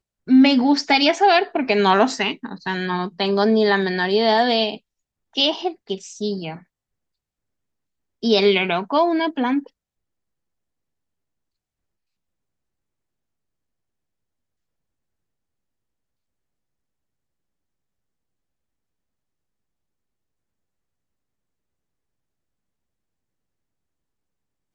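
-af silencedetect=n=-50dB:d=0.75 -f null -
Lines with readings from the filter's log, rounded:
silence_start: 6.63
silence_end: 8.22 | silence_duration: 1.59
silence_start: 9.69
silence_end: 24.74 | silence_duration: 15.05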